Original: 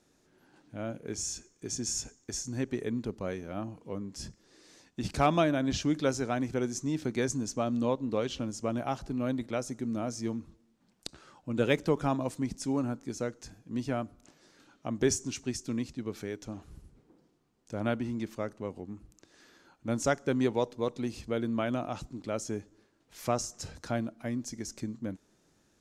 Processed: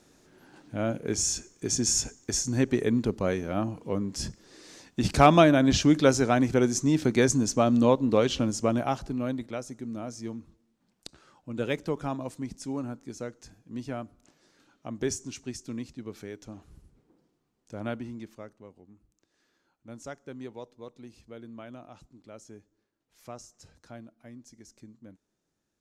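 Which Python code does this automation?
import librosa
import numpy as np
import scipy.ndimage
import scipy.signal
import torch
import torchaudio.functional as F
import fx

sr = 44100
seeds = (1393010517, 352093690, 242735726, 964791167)

y = fx.gain(x, sr, db=fx.line((8.56, 8.0), (9.64, -3.0), (17.96, -3.0), (18.75, -13.0)))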